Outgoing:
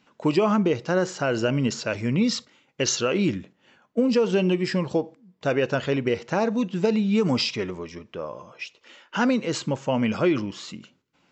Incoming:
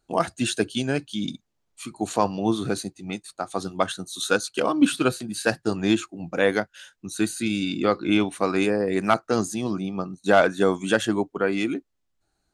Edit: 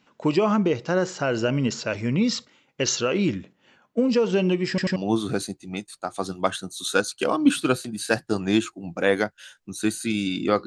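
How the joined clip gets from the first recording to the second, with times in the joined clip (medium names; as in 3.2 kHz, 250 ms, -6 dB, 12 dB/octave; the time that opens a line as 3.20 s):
outgoing
4.69 s: stutter in place 0.09 s, 3 plays
4.96 s: go over to incoming from 2.32 s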